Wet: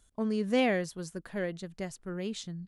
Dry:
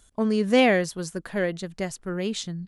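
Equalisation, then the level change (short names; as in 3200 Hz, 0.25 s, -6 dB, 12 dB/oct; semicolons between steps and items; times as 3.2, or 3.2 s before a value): low shelf 320 Hz +3 dB; -9.0 dB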